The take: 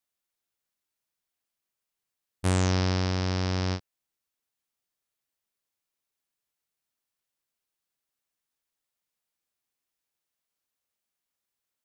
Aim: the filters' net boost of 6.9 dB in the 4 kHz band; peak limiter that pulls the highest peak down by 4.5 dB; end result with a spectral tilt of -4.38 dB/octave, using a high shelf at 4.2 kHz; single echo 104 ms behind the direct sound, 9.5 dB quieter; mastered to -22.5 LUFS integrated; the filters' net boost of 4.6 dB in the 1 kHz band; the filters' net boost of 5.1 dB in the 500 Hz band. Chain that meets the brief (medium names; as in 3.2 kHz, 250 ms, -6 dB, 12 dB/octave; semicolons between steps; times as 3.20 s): peaking EQ 500 Hz +5.5 dB; peaking EQ 1 kHz +3.5 dB; peaking EQ 4 kHz +4.5 dB; treble shelf 4.2 kHz +6.5 dB; peak limiter -10.5 dBFS; delay 104 ms -9.5 dB; trim +4 dB